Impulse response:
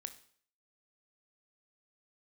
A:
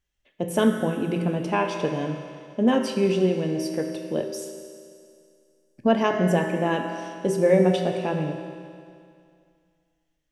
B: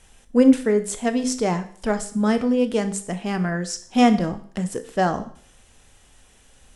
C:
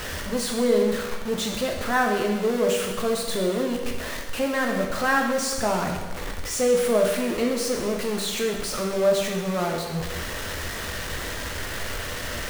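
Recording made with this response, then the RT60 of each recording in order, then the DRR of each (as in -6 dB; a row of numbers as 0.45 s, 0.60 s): B; 2.3 s, 0.55 s, 1.2 s; 3.0 dB, 9.5 dB, 0.5 dB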